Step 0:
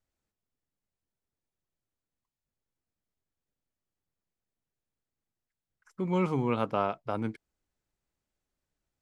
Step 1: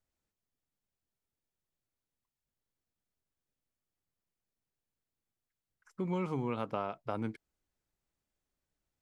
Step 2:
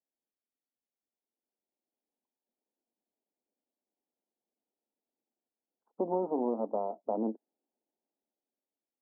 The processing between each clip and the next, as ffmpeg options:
ffmpeg -i in.wav -af "acompressor=threshold=-28dB:ratio=6,volume=-2dB" out.wav
ffmpeg -i in.wav -af "dynaudnorm=framelen=420:gausssize=7:maxgain=11dB,aeval=exprs='0.2*(cos(1*acos(clip(val(0)/0.2,-1,1)))-cos(1*PI/2))+0.0708*(cos(4*acos(clip(val(0)/0.2,-1,1)))-cos(4*PI/2))':channel_layout=same,asuperpass=centerf=440:order=12:qfactor=0.64,volume=-6dB" out.wav

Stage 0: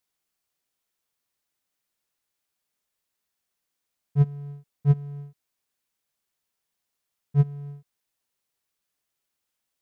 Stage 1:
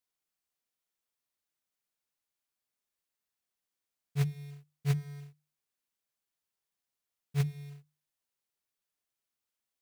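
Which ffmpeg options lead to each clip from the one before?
ffmpeg -i in.wav -af "acrusher=bits=4:mode=log:mix=0:aa=0.000001,bandreject=frequency=50:width_type=h:width=6,bandreject=frequency=100:width_type=h:width=6,bandreject=frequency=150:width_type=h:width=6,volume=-7.5dB" out.wav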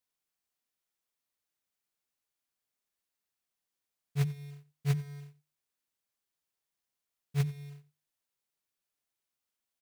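ffmpeg -i in.wav -af "aecho=1:1:89:0.112" out.wav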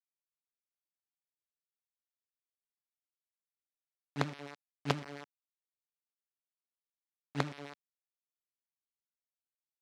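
ffmpeg -i in.wav -af "acrusher=bits=4:dc=4:mix=0:aa=0.000001,highpass=180,lowpass=4900,volume=1dB" out.wav

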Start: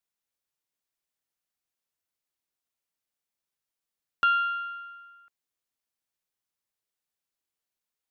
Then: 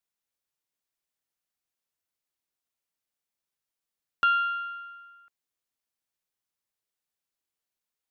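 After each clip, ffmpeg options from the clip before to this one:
ffmpeg -i in.wav -af anull out.wav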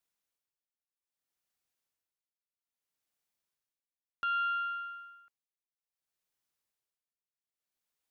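ffmpeg -i in.wav -af "tremolo=f=0.62:d=0.92,volume=1.5dB" out.wav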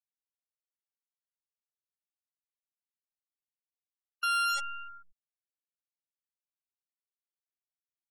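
ffmpeg -i in.wav -af "acrusher=bits=6:dc=4:mix=0:aa=0.000001,afftfilt=real='re*gte(hypot(re,im),0.0224)':imag='im*gte(hypot(re,im),0.0224)':win_size=1024:overlap=0.75,volume=1.5dB" out.wav

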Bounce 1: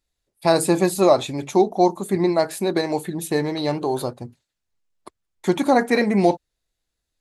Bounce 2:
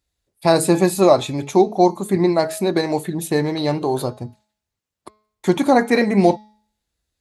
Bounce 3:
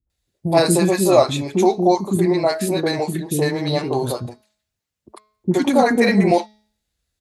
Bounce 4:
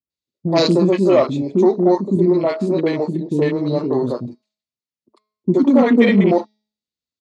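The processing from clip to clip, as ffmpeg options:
ffmpeg -i in.wav -af "highpass=55,lowshelf=frequency=100:gain=8.5,bandreject=frequency=213:width_type=h:width=4,bandreject=frequency=426:width_type=h:width=4,bandreject=frequency=639:width_type=h:width=4,bandreject=frequency=852:width_type=h:width=4,bandreject=frequency=1065:width_type=h:width=4,bandreject=frequency=1278:width_type=h:width=4,bandreject=frequency=1491:width_type=h:width=4,bandreject=frequency=1704:width_type=h:width=4,bandreject=frequency=1917:width_type=h:width=4,bandreject=frequency=2130:width_type=h:width=4,bandreject=frequency=2343:width_type=h:width=4,bandreject=frequency=2556:width_type=h:width=4,bandreject=frequency=2769:width_type=h:width=4,bandreject=frequency=2982:width_type=h:width=4,bandreject=frequency=3195:width_type=h:width=4,bandreject=frequency=3408:width_type=h:width=4,bandreject=frequency=3621:width_type=h:width=4,bandreject=frequency=3834:width_type=h:width=4,bandreject=frequency=4047:width_type=h:width=4,bandreject=frequency=4260:width_type=h:width=4,bandreject=frequency=4473:width_type=h:width=4,bandreject=frequency=4686:width_type=h:width=4,bandreject=frequency=4899:width_type=h:width=4,bandreject=frequency=5112:width_type=h:width=4,bandreject=frequency=5325:width_type=h:width=4,bandreject=frequency=5538:width_type=h:width=4,bandreject=frequency=5751:width_type=h:width=4,bandreject=frequency=5964:width_type=h:width=4,bandreject=frequency=6177:width_type=h:width=4,bandreject=frequency=6390:width_type=h:width=4,bandreject=frequency=6603:width_type=h:width=4,volume=2dB" out.wav
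ffmpeg -i in.wav -filter_complex "[0:a]acrossover=split=330|990[link_01][link_02][link_03];[link_02]adelay=70[link_04];[link_03]adelay=100[link_05];[link_01][link_04][link_05]amix=inputs=3:normalize=0,volume=2dB" out.wav
ffmpeg -i in.wav -af "aeval=exprs='0.891*(cos(1*acos(clip(val(0)/0.891,-1,1)))-cos(1*PI/2))+0.141*(cos(5*acos(clip(val(0)/0.891,-1,1)))-cos(5*PI/2))+0.0398*(cos(7*acos(clip(val(0)/0.891,-1,1)))-cos(7*PI/2))':channel_layout=same,afwtdn=0.0562,highpass=160,equalizer=frequency=250:width_type=q:width=4:gain=5,equalizer=frequency=770:width_type=q:width=4:gain=-10,equalizer=frequency=1600:width_type=q:width=4:gain=-10,equalizer=frequency=4500:width_type=q:width=4:gain=4,lowpass=frequency=7100:width=0.5412,lowpass=frequency=7100:width=1.3066" out.wav

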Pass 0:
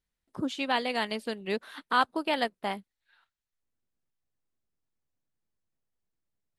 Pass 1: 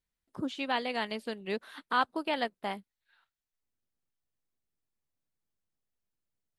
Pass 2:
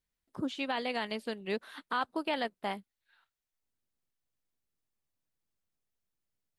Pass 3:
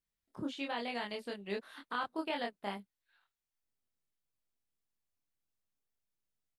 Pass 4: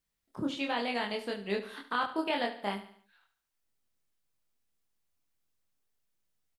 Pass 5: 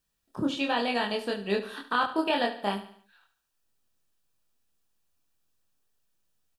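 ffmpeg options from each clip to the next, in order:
ffmpeg -i in.wav -filter_complex "[0:a]acrossover=split=5100[link_01][link_02];[link_02]acompressor=threshold=-52dB:ratio=4:attack=1:release=60[link_03];[link_01][link_03]amix=inputs=2:normalize=0,volume=-3dB" out.wav
ffmpeg -i in.wav -af "alimiter=limit=-21dB:level=0:latency=1:release=31" out.wav
ffmpeg -i in.wav -filter_complex "[0:a]asplit=2[link_01][link_02];[link_02]adelay=25,volume=-2.5dB[link_03];[link_01][link_03]amix=inputs=2:normalize=0,volume=-6dB" out.wav
ffmpeg -i in.wav -af "aecho=1:1:72|144|216|288:0.237|0.107|0.048|0.0216,volume=5.5dB" out.wav
ffmpeg -i in.wav -af "asuperstop=centerf=2100:order=4:qfactor=7.4,volume=5dB" out.wav

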